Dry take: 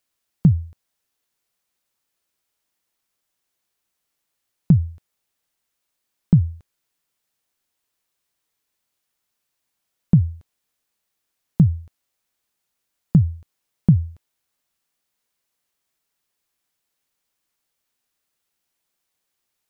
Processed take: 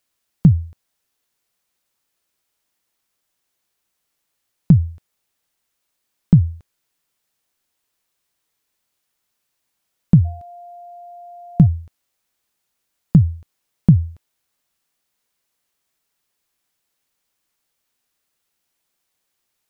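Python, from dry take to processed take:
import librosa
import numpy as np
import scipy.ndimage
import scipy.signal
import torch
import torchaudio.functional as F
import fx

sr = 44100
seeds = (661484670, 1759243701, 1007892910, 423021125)

y = fx.tracing_dist(x, sr, depth_ms=0.063)
y = fx.dmg_tone(y, sr, hz=700.0, level_db=-39.0, at=(10.24, 11.65), fade=0.02)
y = F.gain(torch.from_numpy(y), 3.0).numpy()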